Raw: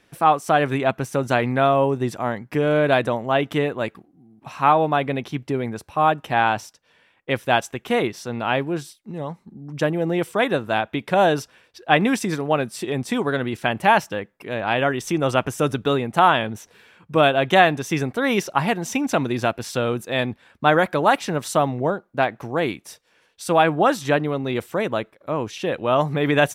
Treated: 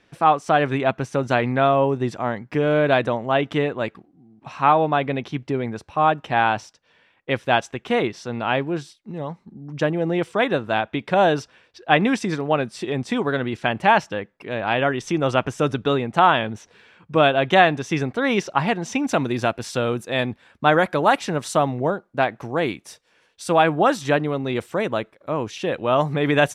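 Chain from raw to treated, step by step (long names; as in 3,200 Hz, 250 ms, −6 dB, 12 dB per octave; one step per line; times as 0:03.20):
low-pass filter 6,000 Hz 12 dB per octave, from 0:19.05 10,000 Hz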